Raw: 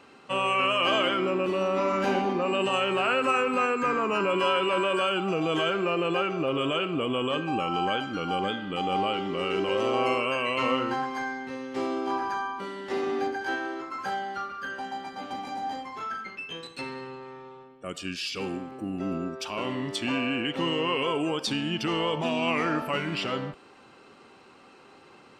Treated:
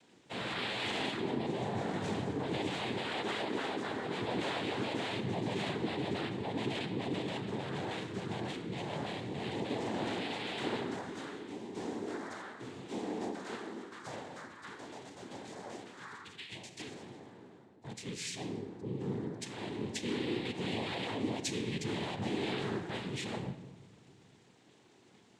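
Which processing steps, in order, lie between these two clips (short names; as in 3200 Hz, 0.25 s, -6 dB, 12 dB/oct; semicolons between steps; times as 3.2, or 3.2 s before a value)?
bell 1100 Hz -13.5 dB 3 oct; noise vocoder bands 6; on a send: reverb RT60 1.3 s, pre-delay 9 ms, DRR 9 dB; on the sum: gain -2.5 dB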